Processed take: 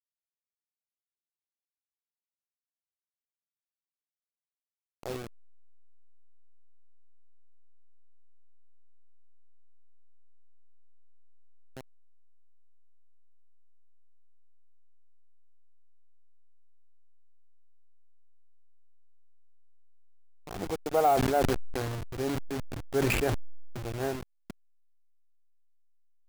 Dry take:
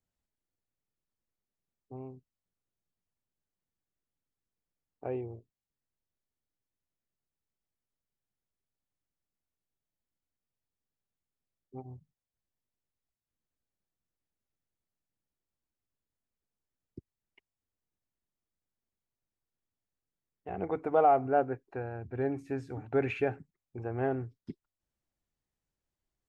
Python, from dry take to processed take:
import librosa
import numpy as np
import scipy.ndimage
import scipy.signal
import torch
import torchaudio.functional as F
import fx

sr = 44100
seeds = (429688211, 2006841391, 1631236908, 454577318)

y = fx.delta_hold(x, sr, step_db=-32.0)
y = fx.sustainer(y, sr, db_per_s=20.0, at=(21.14, 23.8))